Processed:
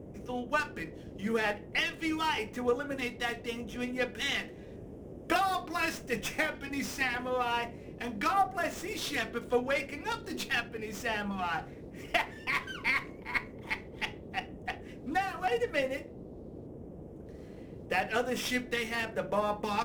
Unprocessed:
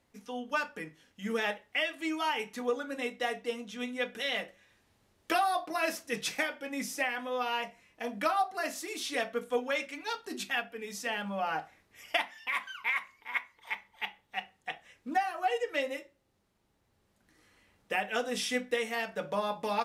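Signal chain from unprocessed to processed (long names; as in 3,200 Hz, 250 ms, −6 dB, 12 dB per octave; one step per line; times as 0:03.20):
auto-filter notch square 0.84 Hz 570–4,200 Hz
noise in a band 36–480 Hz −48 dBFS
windowed peak hold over 3 samples
level +2 dB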